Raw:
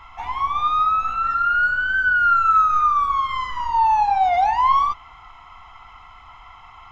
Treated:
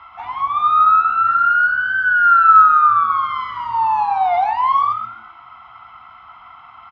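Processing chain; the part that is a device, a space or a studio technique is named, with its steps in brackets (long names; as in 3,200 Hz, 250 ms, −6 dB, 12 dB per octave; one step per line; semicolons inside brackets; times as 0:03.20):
frequency-shifting delay pedal into a guitar cabinet (echo with shifted repeats 131 ms, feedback 32%, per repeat +110 Hz, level −12 dB; loudspeaker in its box 97–4,500 Hz, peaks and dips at 150 Hz −8 dB, 430 Hz −5 dB, 670 Hz +5 dB, 1,300 Hz +9 dB)
level −2 dB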